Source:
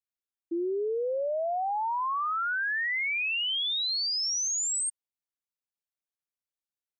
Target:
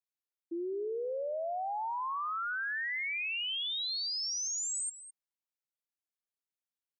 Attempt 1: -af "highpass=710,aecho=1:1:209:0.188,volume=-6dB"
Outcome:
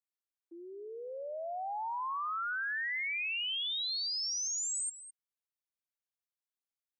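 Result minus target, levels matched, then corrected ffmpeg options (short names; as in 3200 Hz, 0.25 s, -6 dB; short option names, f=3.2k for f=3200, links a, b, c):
250 Hz band -12.0 dB
-af "highpass=200,aecho=1:1:209:0.188,volume=-6dB"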